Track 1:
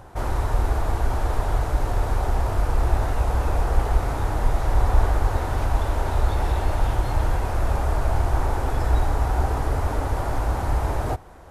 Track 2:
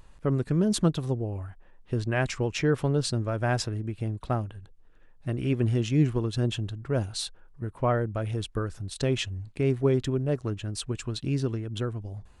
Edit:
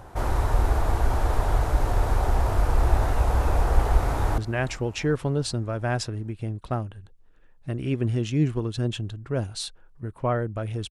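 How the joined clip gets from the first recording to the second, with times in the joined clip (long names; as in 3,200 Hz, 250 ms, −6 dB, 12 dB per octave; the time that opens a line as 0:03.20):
track 1
0:03.81–0:04.38: delay throw 390 ms, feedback 60%, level −18 dB
0:04.38: continue with track 2 from 0:01.97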